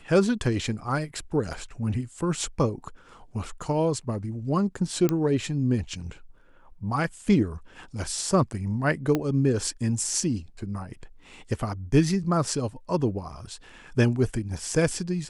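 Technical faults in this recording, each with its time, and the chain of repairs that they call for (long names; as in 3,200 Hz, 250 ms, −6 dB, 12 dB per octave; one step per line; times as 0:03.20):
0:05.09: click −11 dBFS
0:09.15: click −12 dBFS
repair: click removal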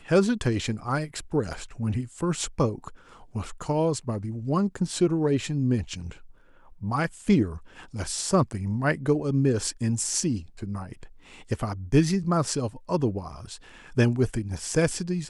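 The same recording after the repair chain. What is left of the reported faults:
0:09.15: click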